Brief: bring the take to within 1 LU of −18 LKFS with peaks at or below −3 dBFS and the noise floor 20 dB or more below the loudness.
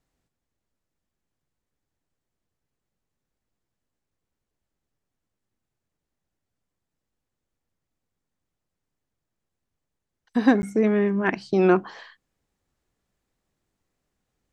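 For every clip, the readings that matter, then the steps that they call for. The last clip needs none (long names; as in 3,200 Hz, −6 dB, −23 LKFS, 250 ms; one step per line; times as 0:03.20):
number of dropouts 1; longest dropout 10 ms; integrated loudness −22.0 LKFS; sample peak −5.5 dBFS; target loudness −18.0 LKFS
→ repair the gap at 0:10.62, 10 ms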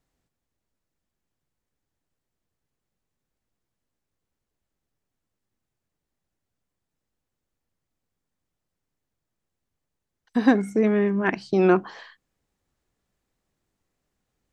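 number of dropouts 0; integrated loudness −22.0 LKFS; sample peak −5.5 dBFS; target loudness −18.0 LKFS
→ level +4 dB
brickwall limiter −3 dBFS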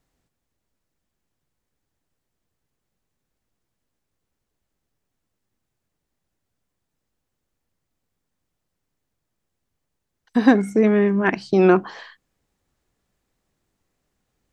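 integrated loudness −18.0 LKFS; sample peak −3.0 dBFS; background noise floor −80 dBFS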